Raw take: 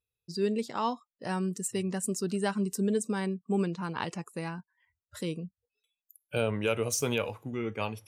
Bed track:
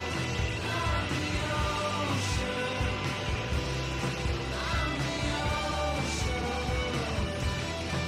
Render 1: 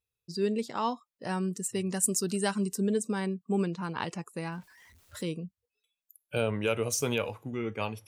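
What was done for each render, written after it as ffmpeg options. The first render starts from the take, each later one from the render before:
-filter_complex "[0:a]asettb=1/sr,asplit=3[a][b][c];[a]atrim=end=1.864[d];[b]atrim=start=1.86:end=2.69,asetpts=PTS-STARTPTS,afade=t=in:d=0.004:c=qsin,afade=t=out:st=0.826:d=0.004:c=qsin,highshelf=f=4.5k:g=10.5[e];[c]atrim=start=2.686[f];[d][e]acrossfade=d=0.004:c1=hsin:c2=qsin[g];[g][f]acrossfade=d=0.004:c1=qsin:c2=hsin,asettb=1/sr,asplit=3[h][i][j];[h]atrim=end=4.524[k];[i]atrim=start=4.52:end=5.22,asetpts=PTS-STARTPTS,afade=t=in:d=0.004:c=qsin,afade=t=out:st=0.696:d=0.004:c=qsin,aeval=exprs='val(0)+0.5*0.00237*sgn(val(0))':c=same[l];[j]atrim=start=5.216[m];[k][l]acrossfade=d=0.004:c1=hsin:c2=qsin[n];[n][m]acrossfade=d=0.004:c1=qsin:c2=hsin"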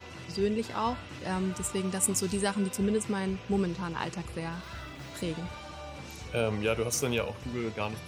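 -filter_complex "[1:a]volume=-12.5dB[a];[0:a][a]amix=inputs=2:normalize=0"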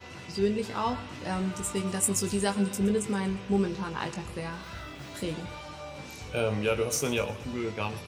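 -filter_complex "[0:a]asplit=2[a][b];[b]adelay=20,volume=-6.5dB[c];[a][c]amix=inputs=2:normalize=0,aecho=1:1:119|238|357|476:0.15|0.0718|0.0345|0.0165"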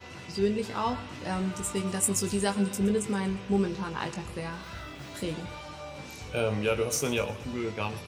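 -af anull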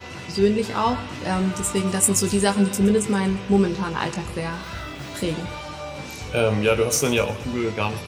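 -af "volume=8dB"

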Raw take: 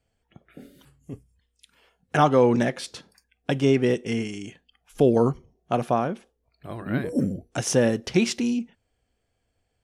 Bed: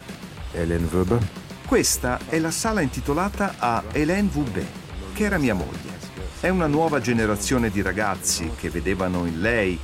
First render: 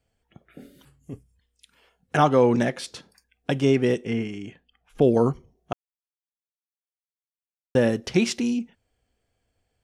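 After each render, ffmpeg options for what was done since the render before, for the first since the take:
-filter_complex "[0:a]asettb=1/sr,asplit=3[a][b][c];[a]atrim=end=4.064[d];[b]atrim=start=4.06:end=5.02,asetpts=PTS-STARTPTS,afade=t=in:d=0.004:c=qsin,afade=t=out:st=0.956:d=0.004:c=qsin,bass=f=250:g=1,treble=f=4k:g=-13[e];[c]atrim=start=5.016[f];[d][e]acrossfade=d=0.004:c1=hsin:c2=qsin[g];[g][f]acrossfade=d=0.004:c1=qsin:c2=hsin,asplit=3[h][i][j];[h]atrim=end=5.73,asetpts=PTS-STARTPTS,afade=t=out:st=5.726:d=0.004:c=hsin[k];[i]atrim=start=5.73:end=7.75,asetpts=PTS-STARTPTS,volume=0[l];[j]atrim=start=7.75,asetpts=PTS-STARTPTS,afade=t=in:d=0.004:c=hsin[m];[k][l][m]concat=n=3:v=0:a=1"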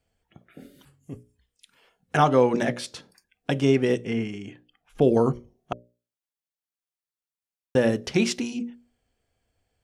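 -af "bandreject=f=60:t=h:w=6,bandreject=f=120:t=h:w=6,bandreject=f=180:t=h:w=6,bandreject=f=240:t=h:w=6,bandreject=f=300:t=h:w=6,bandreject=f=360:t=h:w=6,bandreject=f=420:t=h:w=6,bandreject=f=480:t=h:w=6,bandreject=f=540:t=h:w=6,bandreject=f=600:t=h:w=6"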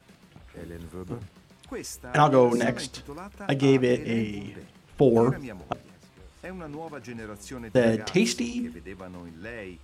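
-filter_complex "[1:a]volume=-17.5dB[a];[0:a][a]amix=inputs=2:normalize=0"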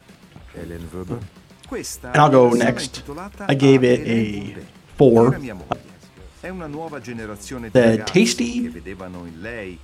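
-af "volume=7.5dB,alimiter=limit=-1dB:level=0:latency=1"

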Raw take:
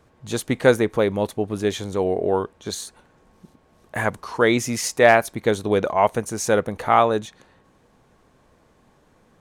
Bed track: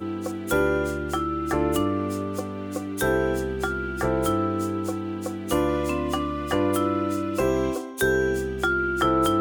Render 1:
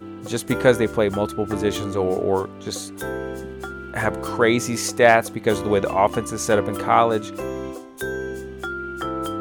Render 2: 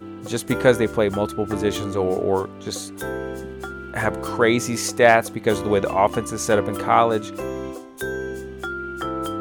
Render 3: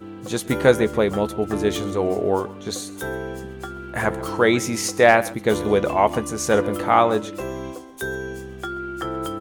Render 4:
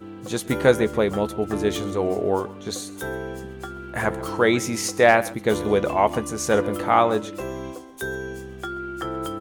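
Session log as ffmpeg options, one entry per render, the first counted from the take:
-filter_complex "[1:a]volume=-6dB[a];[0:a][a]amix=inputs=2:normalize=0"
-af anull
-filter_complex "[0:a]asplit=2[a][b];[b]adelay=14,volume=-12.5dB[c];[a][c]amix=inputs=2:normalize=0,aecho=1:1:131:0.112"
-af "volume=-1.5dB"

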